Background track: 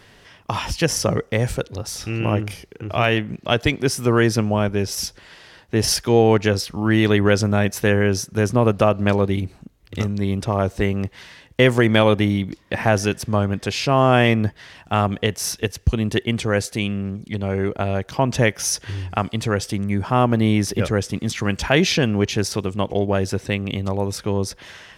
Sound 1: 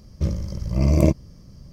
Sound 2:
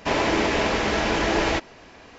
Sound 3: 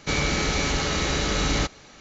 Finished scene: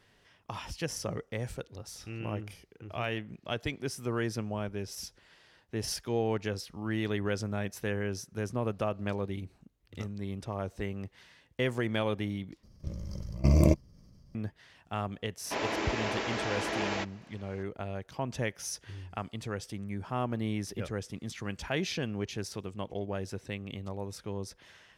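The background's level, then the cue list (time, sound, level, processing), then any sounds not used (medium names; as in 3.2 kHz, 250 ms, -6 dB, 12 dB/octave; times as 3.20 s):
background track -15.5 dB
12.63 s: replace with 1 -2.5 dB + level held to a coarse grid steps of 18 dB
15.45 s: add 2 -10 dB + high-pass 230 Hz 6 dB/octave
not used: 3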